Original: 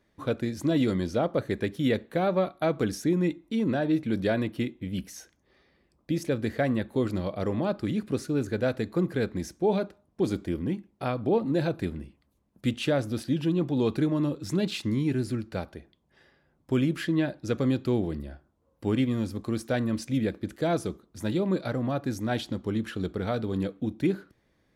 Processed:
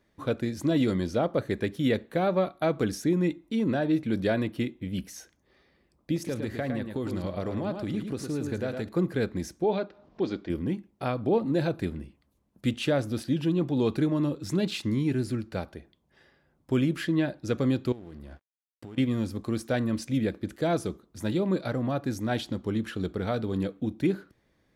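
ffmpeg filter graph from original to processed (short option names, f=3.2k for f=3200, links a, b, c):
-filter_complex "[0:a]asettb=1/sr,asplit=3[a][b][c];[a]atrim=end=6.164[d];[b]atrim=start=6.16:end=8.89,asetpts=PTS-STARTPTS,afade=t=in:d=0.004:c=qsin,afade=t=out:st=2.726:d=0.004:c=qsin,acompressor=threshold=-27dB:ratio=4:attack=3.2:release=140:knee=1:detection=peak,aecho=1:1:109:0.501,atrim=end_sample=120393[e];[c]atrim=start=8.886[f];[d][e]acrossfade=d=0.004:c1=hsin:c2=qsin[g];[g][f]acrossfade=d=0.004:c1=qsin:c2=hsin,asettb=1/sr,asplit=3[h][i][j];[h]atrim=end=9.644[k];[i]atrim=start=9.64:end=10.5,asetpts=PTS-STARTPTS,afade=t=in:d=0.004:c=qsin,afade=t=out:st=0.856:d=0.004:c=qsin,lowpass=f=4.9k:w=0.5412,lowpass=f=4.9k:w=1.3066,acompressor=mode=upward:threshold=-39dB:ratio=2.5:attack=3.2:release=140:knee=2.83:detection=peak,equalizer=f=87:t=o:w=2.1:g=-10.5[l];[j]atrim=start=10.496[m];[k][l]acrossfade=d=0.004:c1=hsin:c2=qsin[n];[n][m]acrossfade=d=0.004:c1=qsin:c2=hsin,asettb=1/sr,asplit=3[o][p][q];[o]atrim=end=17.924[r];[p]atrim=start=17.92:end=18.98,asetpts=PTS-STARTPTS,afade=t=in:d=0.004:c=qsin,afade=t=out:st=1.056:d=0.004:c=qsin,acompressor=threshold=-37dB:ratio=12:attack=3.2:release=140:knee=1:detection=peak,aeval=exprs='sgn(val(0))*max(abs(val(0))-0.00168,0)':c=same[s];[q]atrim=start=18.976[t];[r][s]acrossfade=d=0.004:c1=hsin:c2=qsin[u];[u][t]acrossfade=d=0.004:c1=qsin:c2=hsin"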